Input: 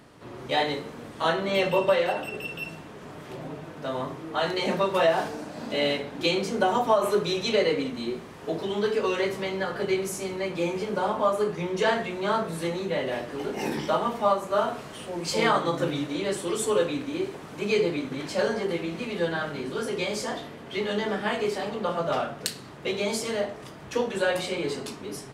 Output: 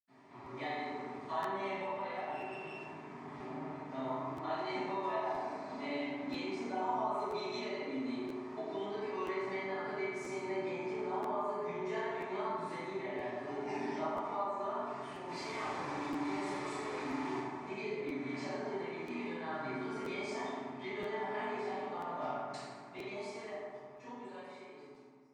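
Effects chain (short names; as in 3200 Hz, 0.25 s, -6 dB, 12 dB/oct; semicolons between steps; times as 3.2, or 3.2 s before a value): ending faded out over 5.14 s; compressor 5:1, threshold -29 dBFS, peak gain reduction 12 dB; 15.2–17.3 Schmitt trigger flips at -45.5 dBFS; speaker cabinet 150–7700 Hz, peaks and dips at 220 Hz -10 dB, 470 Hz -5 dB, 1000 Hz +10 dB, 1500 Hz -3 dB, 2200 Hz +7 dB; reverb RT60 1.8 s, pre-delay 77 ms; crackling interface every 0.98 s, samples 512, repeat, from 0.44; gain -1 dB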